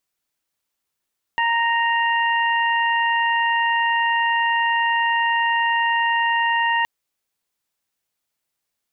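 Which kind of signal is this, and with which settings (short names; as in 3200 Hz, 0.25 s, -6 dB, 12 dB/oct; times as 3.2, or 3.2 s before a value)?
steady additive tone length 5.47 s, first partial 930 Hz, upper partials -1/-7 dB, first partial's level -19.5 dB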